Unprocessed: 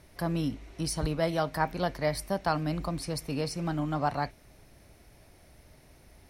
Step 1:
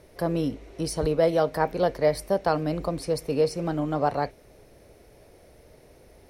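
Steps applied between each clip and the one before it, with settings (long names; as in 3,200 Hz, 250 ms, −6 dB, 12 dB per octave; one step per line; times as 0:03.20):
parametric band 470 Hz +13 dB 0.85 octaves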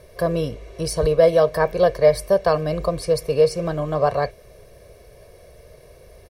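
comb filter 1.8 ms, depth 72%
level +3.5 dB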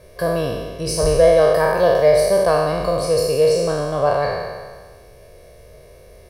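peak hold with a decay on every bin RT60 1.55 s
level −1 dB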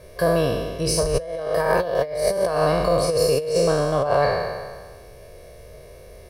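compressor whose output falls as the input rises −18 dBFS, ratio −0.5
level −1.5 dB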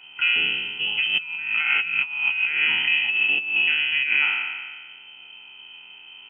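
voice inversion scrambler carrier 3,100 Hz
level −2 dB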